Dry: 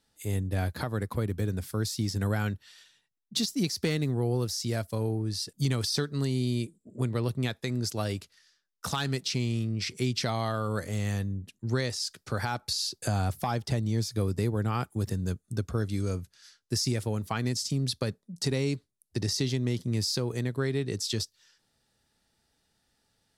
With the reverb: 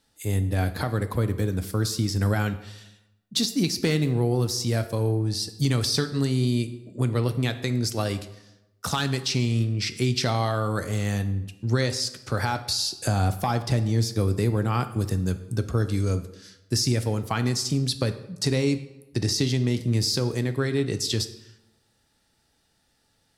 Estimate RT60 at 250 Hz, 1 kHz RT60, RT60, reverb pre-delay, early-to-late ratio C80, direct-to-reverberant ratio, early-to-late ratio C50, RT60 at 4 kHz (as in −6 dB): 1.0 s, 0.95 s, 0.95 s, 3 ms, 15.0 dB, 9.5 dB, 12.5 dB, 0.65 s